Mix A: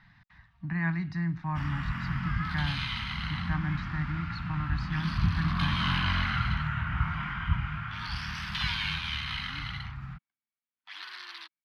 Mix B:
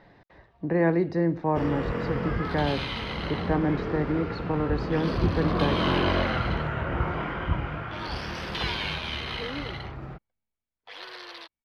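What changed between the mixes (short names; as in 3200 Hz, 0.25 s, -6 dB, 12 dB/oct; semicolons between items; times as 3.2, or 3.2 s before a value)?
second sound: remove resonant high-pass 330 Hz, resonance Q 4.1; master: remove Chebyshev band-stop 160–1300 Hz, order 2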